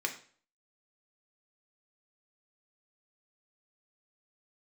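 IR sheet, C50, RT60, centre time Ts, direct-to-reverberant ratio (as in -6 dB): 11.0 dB, 0.45 s, 12 ms, 2.0 dB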